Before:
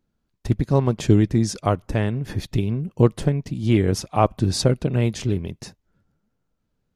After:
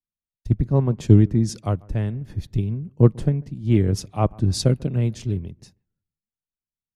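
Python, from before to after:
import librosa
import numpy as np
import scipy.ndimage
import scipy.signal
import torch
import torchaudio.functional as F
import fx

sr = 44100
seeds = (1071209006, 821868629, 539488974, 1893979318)

p1 = fx.low_shelf(x, sr, hz=310.0, db=10.5)
p2 = p1 + fx.echo_bbd(p1, sr, ms=146, stages=2048, feedback_pct=31, wet_db=-23.5, dry=0)
p3 = fx.band_widen(p2, sr, depth_pct=70)
y = F.gain(torch.from_numpy(p3), -8.0).numpy()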